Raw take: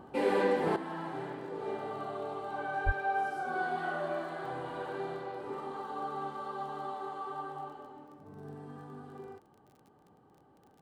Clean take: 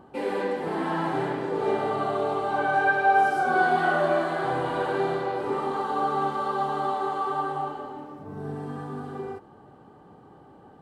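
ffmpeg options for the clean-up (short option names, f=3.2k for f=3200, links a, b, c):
-filter_complex "[0:a]adeclick=t=4,asplit=3[a][b][c];[a]afade=t=out:st=2.85:d=0.02[d];[b]highpass=f=140:w=0.5412,highpass=f=140:w=1.3066,afade=t=in:st=2.85:d=0.02,afade=t=out:st=2.97:d=0.02[e];[c]afade=t=in:st=2.97:d=0.02[f];[d][e][f]amix=inputs=3:normalize=0,asetnsamples=n=441:p=0,asendcmd='0.76 volume volume 12dB',volume=0dB"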